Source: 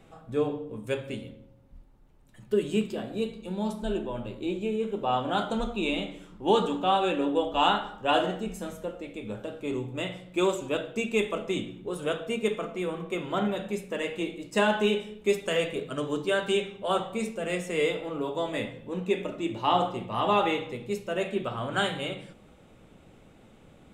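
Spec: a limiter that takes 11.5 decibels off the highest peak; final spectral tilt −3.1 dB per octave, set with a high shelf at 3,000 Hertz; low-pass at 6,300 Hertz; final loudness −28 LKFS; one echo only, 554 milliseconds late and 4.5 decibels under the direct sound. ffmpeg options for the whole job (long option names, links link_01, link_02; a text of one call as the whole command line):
ffmpeg -i in.wav -af "lowpass=6300,highshelf=frequency=3000:gain=8,alimiter=limit=-19dB:level=0:latency=1,aecho=1:1:554:0.596,volume=2dB" out.wav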